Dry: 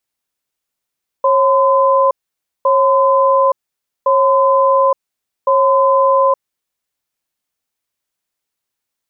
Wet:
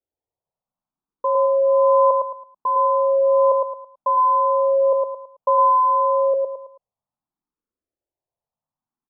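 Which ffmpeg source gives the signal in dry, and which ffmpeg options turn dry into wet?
-f lavfi -i "aevalsrc='0.266*(sin(2*PI*544*t)+sin(2*PI*1020*t))*clip(min(mod(t,1.41),0.87-mod(t,1.41))/0.005,0,1)':duration=5.28:sample_rate=44100"
-filter_complex "[0:a]lowpass=frequency=1000:width=0.5412,lowpass=frequency=1000:width=1.3066,asplit=2[link_01][link_02];[link_02]aecho=0:1:109|218|327|436:0.668|0.221|0.0728|0.024[link_03];[link_01][link_03]amix=inputs=2:normalize=0,asplit=2[link_04][link_05];[link_05]afreqshift=0.63[link_06];[link_04][link_06]amix=inputs=2:normalize=1"

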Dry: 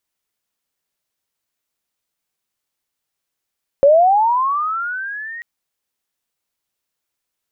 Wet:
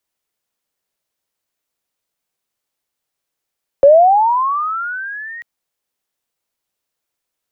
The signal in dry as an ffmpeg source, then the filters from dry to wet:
-f lavfi -i "aevalsrc='pow(10,(-6-22*t/1.59)/20)*sin(2*PI*(540*t+1360*t*t/(2*1.59)))':duration=1.59:sample_rate=44100"
-filter_complex "[0:a]equalizer=frequency=550:width_type=o:width=1.4:gain=3.5,acrossover=split=140|270|480[link_01][link_02][link_03][link_04];[link_02]asoftclip=type=tanh:threshold=-37.5dB[link_05];[link_01][link_05][link_03][link_04]amix=inputs=4:normalize=0"

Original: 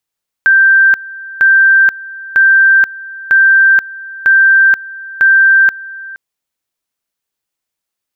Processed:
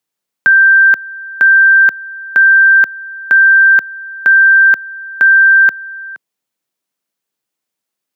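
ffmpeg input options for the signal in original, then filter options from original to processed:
-f lavfi -i "aevalsrc='pow(10,(-4-20.5*gte(mod(t,0.95),0.48))/20)*sin(2*PI*1570*t)':duration=5.7:sample_rate=44100"
-filter_complex "[0:a]lowshelf=frequency=440:gain=6.5,acrossover=split=130|1000[link_01][link_02][link_03];[link_01]acrusher=bits=4:mix=0:aa=0.000001[link_04];[link_04][link_02][link_03]amix=inputs=3:normalize=0"

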